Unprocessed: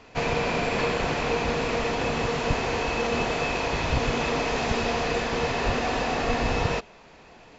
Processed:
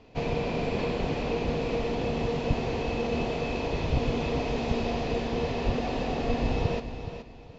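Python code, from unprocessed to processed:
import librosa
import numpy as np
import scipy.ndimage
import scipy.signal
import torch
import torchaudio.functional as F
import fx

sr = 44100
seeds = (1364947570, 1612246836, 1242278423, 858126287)

y = scipy.signal.sosfilt(scipy.signal.butter(2, 3600.0, 'lowpass', fs=sr, output='sos'), x)
y = fx.peak_eq(y, sr, hz=1500.0, db=-13.5, octaves=1.7)
y = fx.echo_feedback(y, sr, ms=422, feedback_pct=26, wet_db=-10.0)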